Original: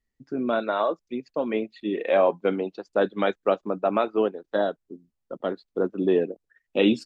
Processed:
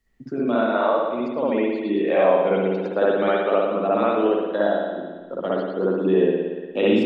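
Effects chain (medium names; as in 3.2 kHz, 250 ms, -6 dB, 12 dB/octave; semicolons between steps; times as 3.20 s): spring tank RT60 1.1 s, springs 58 ms, chirp 55 ms, DRR -7.5 dB; three bands compressed up and down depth 40%; trim -4 dB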